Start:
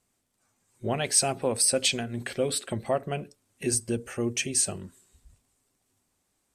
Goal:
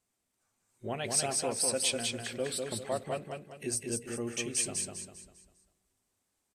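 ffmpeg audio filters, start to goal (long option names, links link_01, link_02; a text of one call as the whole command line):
ffmpeg -i in.wav -filter_complex "[0:a]lowshelf=frequency=260:gain=-4,asplit=2[link_01][link_02];[link_02]aecho=0:1:199|398|597|796|995:0.668|0.254|0.0965|0.0367|0.0139[link_03];[link_01][link_03]amix=inputs=2:normalize=0,volume=-6.5dB" -ar 44100 -c:a libvorbis -b:a 96k out.ogg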